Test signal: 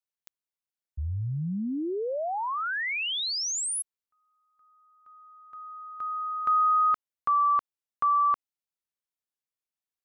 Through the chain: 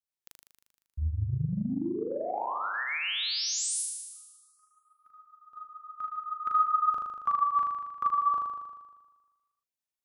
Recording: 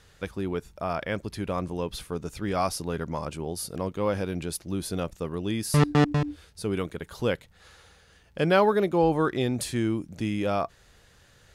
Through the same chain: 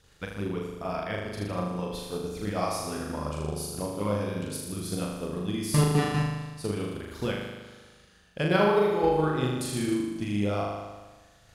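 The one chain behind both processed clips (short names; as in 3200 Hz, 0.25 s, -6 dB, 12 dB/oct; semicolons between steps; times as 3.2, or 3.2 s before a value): LFO notch sine 7.1 Hz 340–2100 Hz; flutter echo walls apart 6.7 m, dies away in 1.3 s; transient shaper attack +5 dB, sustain -1 dB; gain -5.5 dB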